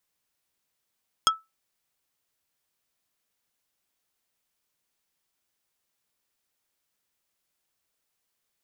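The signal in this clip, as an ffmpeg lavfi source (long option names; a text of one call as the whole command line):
ffmpeg -f lavfi -i "aevalsrc='0.2*pow(10,-3*t/0.2)*sin(2*PI*1310*t)+0.168*pow(10,-3*t/0.067)*sin(2*PI*3275*t)+0.141*pow(10,-3*t/0.038)*sin(2*PI*5240*t)+0.119*pow(10,-3*t/0.029)*sin(2*PI*6550*t)+0.1*pow(10,-3*t/0.021)*sin(2*PI*8515*t)':duration=0.45:sample_rate=44100" out.wav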